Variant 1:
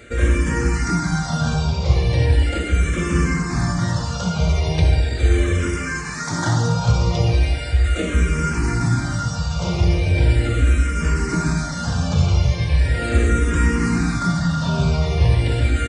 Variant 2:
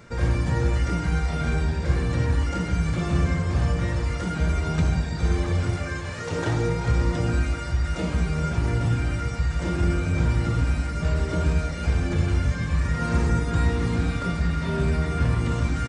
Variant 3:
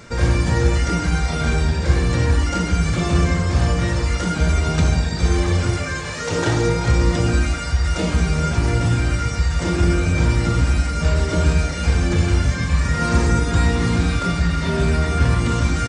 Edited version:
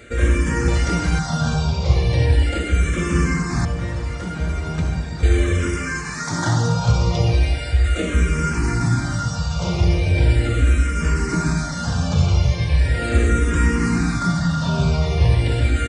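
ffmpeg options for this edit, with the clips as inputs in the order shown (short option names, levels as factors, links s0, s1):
-filter_complex "[0:a]asplit=3[s0][s1][s2];[s0]atrim=end=0.682[s3];[2:a]atrim=start=0.678:end=1.192[s4];[s1]atrim=start=1.188:end=3.652[s5];[1:a]atrim=start=3.648:end=5.232[s6];[s2]atrim=start=5.228[s7];[s3][s4]acrossfade=d=0.004:c1=hsin:c2=hsin[s8];[s8][s5]acrossfade=d=0.004:c1=hsin:c2=hsin[s9];[s9][s6]acrossfade=d=0.004:c1=hsin:c2=hsin[s10];[s10][s7]acrossfade=d=0.004:c1=hsin:c2=hsin"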